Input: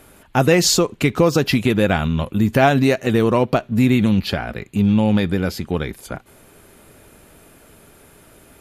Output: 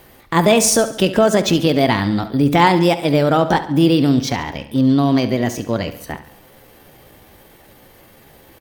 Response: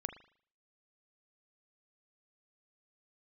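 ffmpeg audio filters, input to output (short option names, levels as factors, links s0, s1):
-filter_complex "[0:a]asetrate=57191,aresample=44100,atempo=0.771105,aecho=1:1:70|140|210|280|350:0.2|0.102|0.0519|0.0265|0.0135,asplit=2[s0][s1];[1:a]atrim=start_sample=2205,asetrate=40131,aresample=44100[s2];[s1][s2]afir=irnorm=-1:irlink=0,volume=0.631[s3];[s0][s3]amix=inputs=2:normalize=0,volume=0.75"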